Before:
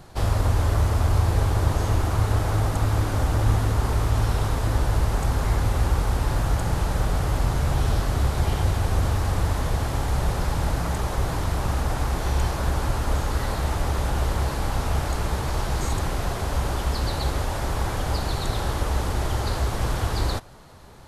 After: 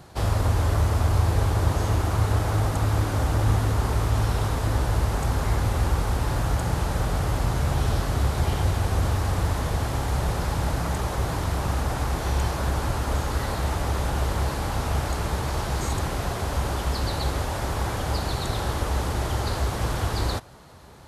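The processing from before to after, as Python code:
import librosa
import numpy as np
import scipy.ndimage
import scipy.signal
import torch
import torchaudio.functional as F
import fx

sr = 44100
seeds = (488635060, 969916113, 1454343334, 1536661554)

y = scipy.signal.sosfilt(scipy.signal.butter(2, 47.0, 'highpass', fs=sr, output='sos'), x)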